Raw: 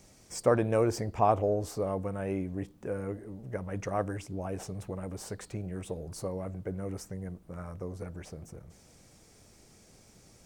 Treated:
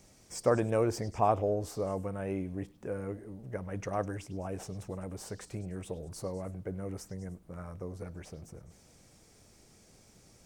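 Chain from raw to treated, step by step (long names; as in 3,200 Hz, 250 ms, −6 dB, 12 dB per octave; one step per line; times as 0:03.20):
echo through a band-pass that steps 101 ms, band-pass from 4,000 Hz, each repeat 0.7 octaves, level −11 dB
level −2 dB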